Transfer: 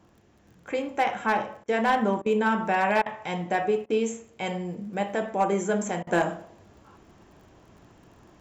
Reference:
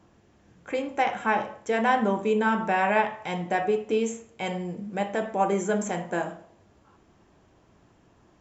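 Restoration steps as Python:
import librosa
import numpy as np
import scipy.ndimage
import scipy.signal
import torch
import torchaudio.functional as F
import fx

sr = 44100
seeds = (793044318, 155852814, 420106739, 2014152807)

y = fx.fix_declip(x, sr, threshold_db=-15.5)
y = fx.fix_declick_ar(y, sr, threshold=6.5)
y = fx.fix_interpolate(y, sr, at_s=(1.64, 2.22, 3.02, 3.86, 6.03), length_ms=39.0)
y = fx.fix_level(y, sr, at_s=6.07, step_db=-5.5)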